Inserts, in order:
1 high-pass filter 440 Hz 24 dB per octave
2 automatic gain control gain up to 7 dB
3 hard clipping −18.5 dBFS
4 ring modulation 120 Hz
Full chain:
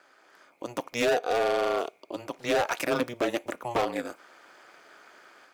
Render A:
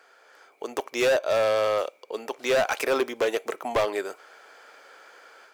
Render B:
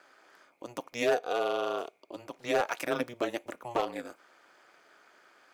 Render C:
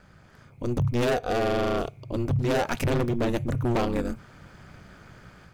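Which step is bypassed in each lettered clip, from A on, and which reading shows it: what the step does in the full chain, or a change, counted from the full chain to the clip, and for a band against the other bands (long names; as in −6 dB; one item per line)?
4, change in crest factor −3.0 dB
2, change in crest factor +4.0 dB
1, 125 Hz band +21.0 dB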